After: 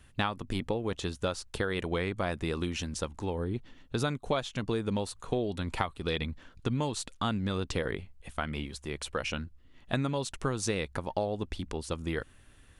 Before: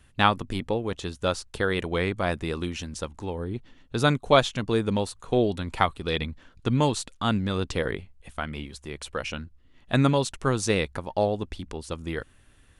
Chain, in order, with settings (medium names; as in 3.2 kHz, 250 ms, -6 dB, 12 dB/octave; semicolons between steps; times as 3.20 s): compression 6:1, threshold -27 dBFS, peak gain reduction 14 dB